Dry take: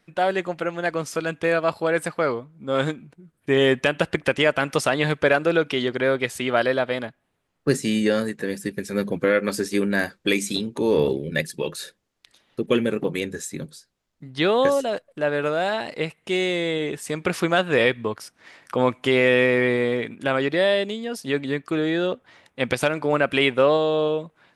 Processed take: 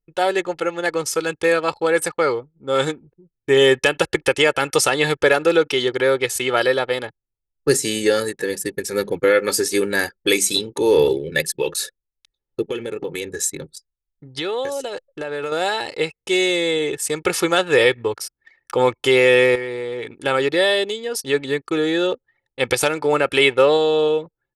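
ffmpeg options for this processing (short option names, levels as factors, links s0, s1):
-filter_complex "[0:a]asettb=1/sr,asplit=3[s0][s1][s2];[s0]atrim=end=12.694[s3];[s1]atrim=start=12.69:end=15.52,asetpts=PTS-STARTPTS,afade=t=in:d=0.004:c=qsin,afade=t=out:st=2.826:d=0.004:c=qsin,acompressor=threshold=0.0501:ratio=4:attack=3.2:release=140:knee=1:detection=peak[s4];[s2]atrim=start=15.516[s5];[s3][s4]acrossfade=d=0.004:c1=hsin:c2=qsin[s6];[s6][s5]acrossfade=d=0.004:c1=qsin:c2=hsin,asettb=1/sr,asplit=3[s7][s8][s9];[s7]atrim=end=19.554[s10];[s8]atrim=start=19.55:end=20.14,asetpts=PTS-STARTPTS,afade=t=in:d=0.004:c=qsin,afade=t=out:st=0.586:d=0.004:c=qsin,acompressor=threshold=0.0501:ratio=6:attack=3.2:release=140:knee=1:detection=peak[s11];[s9]atrim=start=20.136[s12];[s10][s11]acrossfade=d=0.004:c1=hsin:c2=qsin[s13];[s13][s12]acrossfade=d=0.004:c1=qsin:c2=hsin,anlmdn=0.251,bass=f=250:g=-3,treble=f=4000:g=9,aecho=1:1:2.3:0.6,volume=1.26"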